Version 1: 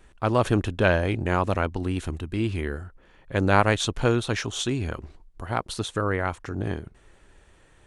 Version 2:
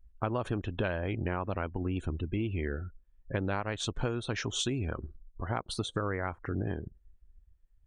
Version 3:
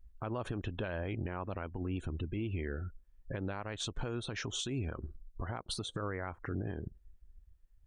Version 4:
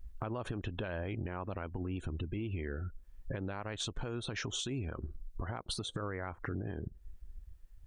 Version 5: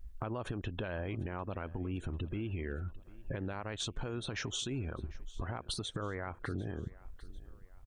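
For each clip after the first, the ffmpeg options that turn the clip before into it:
ffmpeg -i in.wav -af "afftdn=noise_reduction=35:noise_floor=-40,acompressor=threshold=-28dB:ratio=10" out.wav
ffmpeg -i in.wav -af "alimiter=level_in=4.5dB:limit=-24dB:level=0:latency=1:release=155,volume=-4.5dB,volume=1dB" out.wav
ffmpeg -i in.wav -af "acompressor=threshold=-47dB:ratio=3,volume=9dB" out.wav
ffmpeg -i in.wav -af "aecho=1:1:747|1494|2241:0.0891|0.0392|0.0173" out.wav

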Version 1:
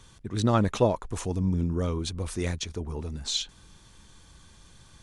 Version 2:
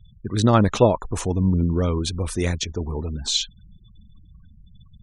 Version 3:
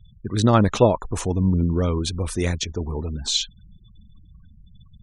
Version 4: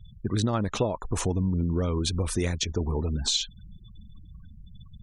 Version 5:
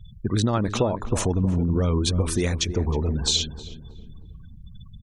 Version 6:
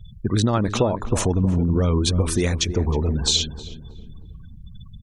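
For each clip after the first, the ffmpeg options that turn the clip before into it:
ffmpeg -i in.wav -af "afftfilt=real='re*gte(hypot(re,im),0.00562)':imag='im*gte(hypot(re,im),0.00562)':win_size=1024:overlap=0.75,volume=6.5dB" out.wav
ffmpeg -i in.wav -af anull out.wav
ffmpeg -i in.wav -af "acompressor=threshold=-25dB:ratio=6,volume=2dB" out.wav
ffmpeg -i in.wav -filter_complex "[0:a]asplit=2[link_01][link_02];[link_02]adelay=315,lowpass=frequency=1100:poles=1,volume=-10dB,asplit=2[link_03][link_04];[link_04]adelay=315,lowpass=frequency=1100:poles=1,volume=0.42,asplit=2[link_05][link_06];[link_06]adelay=315,lowpass=frequency=1100:poles=1,volume=0.42,asplit=2[link_07][link_08];[link_08]adelay=315,lowpass=frequency=1100:poles=1,volume=0.42[link_09];[link_01][link_03][link_05][link_07][link_09]amix=inputs=5:normalize=0,volume=3.5dB" out.wav
ffmpeg -i in.wav -af "volume=2.5dB" -ar 48000 -c:a aac -b:a 192k out.aac

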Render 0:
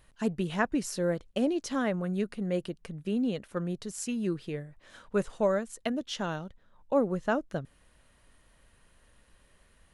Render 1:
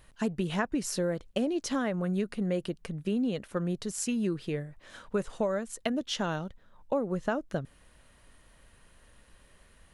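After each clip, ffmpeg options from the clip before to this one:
ffmpeg -i in.wav -af "acompressor=threshold=-29dB:ratio=6,volume=3.5dB" out.wav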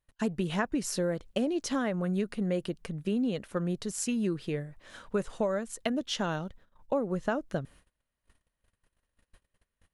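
ffmpeg -i in.wav -af "agate=range=-27dB:threshold=-53dB:ratio=16:detection=peak" out.wav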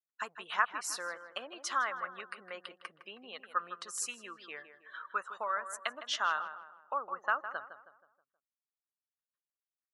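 ffmpeg -i in.wav -filter_complex "[0:a]afftdn=noise_reduction=35:noise_floor=-50,highpass=frequency=1200:width_type=q:width=4.1,asplit=2[link_01][link_02];[link_02]adelay=159,lowpass=frequency=1900:poles=1,volume=-10dB,asplit=2[link_03][link_04];[link_04]adelay=159,lowpass=frequency=1900:poles=1,volume=0.45,asplit=2[link_05][link_06];[link_06]adelay=159,lowpass=frequency=1900:poles=1,volume=0.45,asplit=2[link_07][link_08];[link_08]adelay=159,lowpass=frequency=1900:poles=1,volume=0.45,asplit=2[link_09][link_10];[link_10]adelay=159,lowpass=frequency=1900:poles=1,volume=0.45[link_11];[link_03][link_05][link_07][link_09][link_11]amix=inputs=5:normalize=0[link_12];[link_01][link_12]amix=inputs=2:normalize=0,volume=-2dB" out.wav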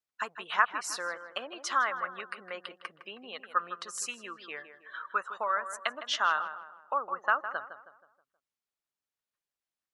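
ffmpeg -i in.wav -af "highshelf=frequency=9400:gain=-10.5,volume=4.5dB" out.wav

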